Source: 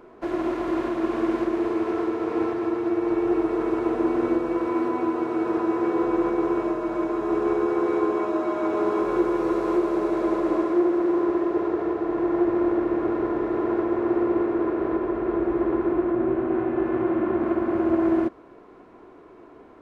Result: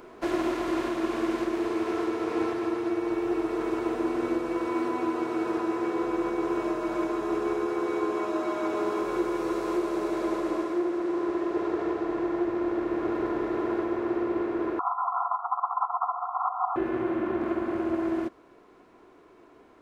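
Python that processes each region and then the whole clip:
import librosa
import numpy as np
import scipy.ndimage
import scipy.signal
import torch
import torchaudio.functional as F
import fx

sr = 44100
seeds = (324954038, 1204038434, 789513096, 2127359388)

y = fx.chain(x, sr, fx.over_compress(threshold_db=-26.0, ratio=-0.5),
    fx.brickwall_bandpass(low_hz=690.0, high_hz=1400.0),
    fx.peak_eq(hz=1100.0, db=13.5, octaves=2.2), at=(14.79, 16.76))
y = fx.high_shelf(y, sr, hz=2500.0, db=12.0)
y = fx.rider(y, sr, range_db=10, speed_s=0.5)
y = y * 10.0 ** (-5.0 / 20.0)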